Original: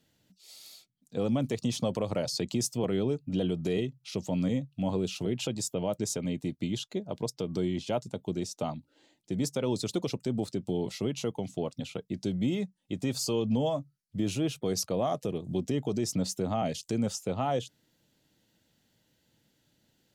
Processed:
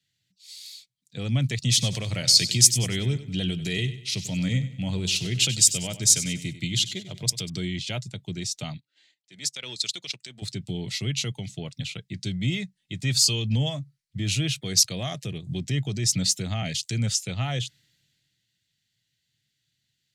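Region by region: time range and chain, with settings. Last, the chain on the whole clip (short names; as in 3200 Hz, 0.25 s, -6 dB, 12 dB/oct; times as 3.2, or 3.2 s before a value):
1.68–7.5 high shelf 7100 Hz +7.5 dB + feedback echo 96 ms, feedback 44%, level -13 dB
8.77–10.42 weighting filter A + transient shaper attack -6 dB, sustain -10 dB
whole clip: graphic EQ 125/250/500/1000/2000/4000/8000 Hz +10/-7/-8/-10/+11/+9/+7 dB; three-band expander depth 40%; gain +2 dB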